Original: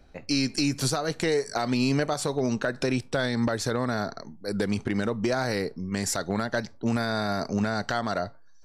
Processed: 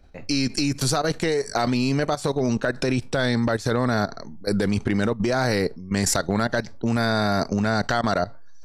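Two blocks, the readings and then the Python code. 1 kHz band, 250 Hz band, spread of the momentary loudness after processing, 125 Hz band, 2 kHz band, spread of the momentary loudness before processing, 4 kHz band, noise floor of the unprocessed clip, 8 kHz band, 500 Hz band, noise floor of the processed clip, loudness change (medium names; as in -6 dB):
+5.0 dB, +4.0 dB, 4 LU, +5.5 dB, +4.0 dB, 5 LU, +3.5 dB, -48 dBFS, +4.0 dB, +4.0 dB, -38 dBFS, +4.0 dB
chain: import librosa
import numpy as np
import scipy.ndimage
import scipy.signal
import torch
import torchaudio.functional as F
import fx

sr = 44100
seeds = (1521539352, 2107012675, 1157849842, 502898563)

y = fx.low_shelf(x, sr, hz=81.0, db=6.5)
y = fx.level_steps(y, sr, step_db=15)
y = F.gain(torch.from_numpy(y), 8.5).numpy()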